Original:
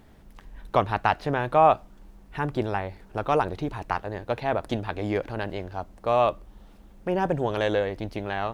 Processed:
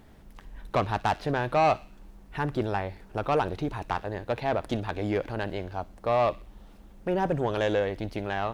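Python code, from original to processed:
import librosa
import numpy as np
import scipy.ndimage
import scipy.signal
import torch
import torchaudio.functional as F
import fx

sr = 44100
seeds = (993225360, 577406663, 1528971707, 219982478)

y = 10.0 ** (-16.5 / 20.0) * np.tanh(x / 10.0 ** (-16.5 / 20.0))
y = fx.echo_wet_highpass(y, sr, ms=60, feedback_pct=48, hz=2300.0, wet_db=-16.0)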